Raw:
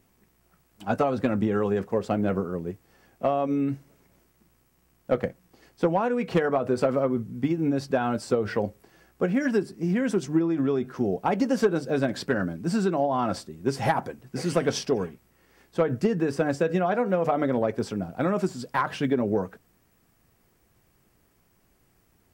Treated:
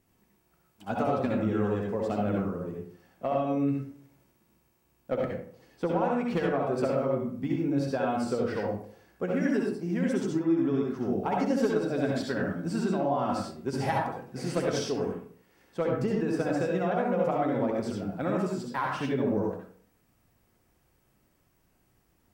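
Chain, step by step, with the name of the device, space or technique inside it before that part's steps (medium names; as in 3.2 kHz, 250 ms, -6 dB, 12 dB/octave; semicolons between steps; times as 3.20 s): bathroom (reverberation RT60 0.50 s, pre-delay 59 ms, DRR -1 dB); trim -7 dB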